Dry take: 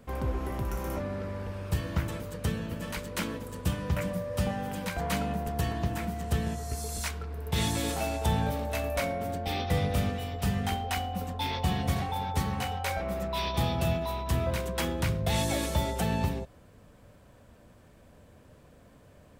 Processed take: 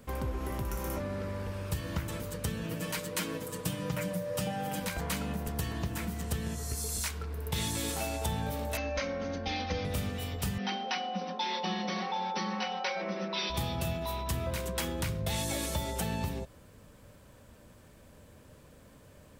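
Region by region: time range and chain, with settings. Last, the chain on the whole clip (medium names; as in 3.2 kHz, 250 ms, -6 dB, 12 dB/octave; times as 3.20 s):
2.63–4.80 s: high-pass 100 Hz + comb 6.4 ms
8.77–9.85 s: rippled Chebyshev low-pass 6.4 kHz, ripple 3 dB + comb 3.8 ms, depth 93%
10.58–13.50 s: brick-wall FIR band-pass 180–6100 Hz + comb 5.5 ms, depth 87%
whole clip: treble shelf 3.9 kHz +6.5 dB; band-stop 710 Hz, Q 12; compression 3:1, threshold -31 dBFS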